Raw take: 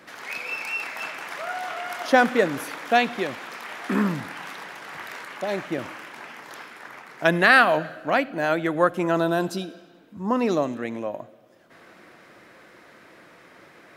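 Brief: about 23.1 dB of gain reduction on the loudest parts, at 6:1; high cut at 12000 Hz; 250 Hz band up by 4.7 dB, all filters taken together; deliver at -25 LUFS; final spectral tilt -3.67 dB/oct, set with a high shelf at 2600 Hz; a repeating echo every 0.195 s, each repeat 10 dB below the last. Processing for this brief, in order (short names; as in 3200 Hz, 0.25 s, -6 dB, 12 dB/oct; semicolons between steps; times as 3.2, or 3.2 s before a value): LPF 12000 Hz; bell 250 Hz +6 dB; high shelf 2600 Hz +8 dB; compressor 6:1, threshold -34 dBFS; feedback echo 0.195 s, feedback 32%, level -10 dB; gain +12 dB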